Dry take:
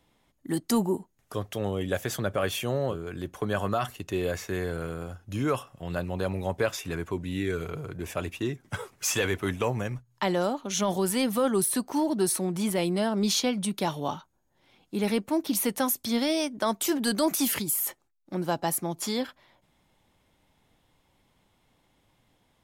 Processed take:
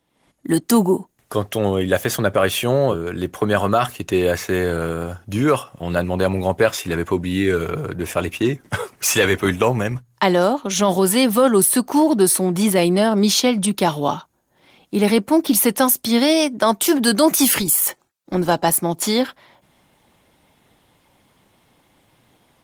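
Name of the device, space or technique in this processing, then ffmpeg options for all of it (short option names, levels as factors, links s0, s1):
video call: -af "highpass=f=120:p=1,dynaudnorm=f=130:g=3:m=4.73,volume=0.891" -ar 48000 -c:a libopus -b:a 24k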